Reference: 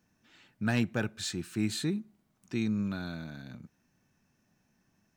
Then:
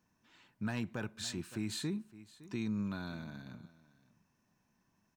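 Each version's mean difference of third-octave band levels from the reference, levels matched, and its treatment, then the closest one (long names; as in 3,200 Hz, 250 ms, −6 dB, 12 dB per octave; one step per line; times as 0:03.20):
3.0 dB: single-tap delay 562 ms −20 dB
brickwall limiter −23.5 dBFS, peak gain reduction 5.5 dB
parametric band 1,000 Hz +10 dB 0.25 octaves
level −4.5 dB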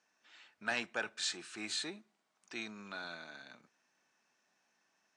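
8.0 dB: in parallel at −10 dB: soft clipping −35 dBFS, distortion −6 dB
on the sum: band-pass filter 670–7,600 Hz
level −1 dB
AAC 48 kbit/s 22,050 Hz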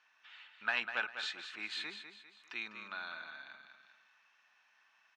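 12.0 dB: Chebyshev band-pass filter 1,000–3,200 Hz, order 2
on a send: repeating echo 199 ms, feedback 31%, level −9 dB
on the sum: one half of a high-frequency compander encoder only
level +3 dB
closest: first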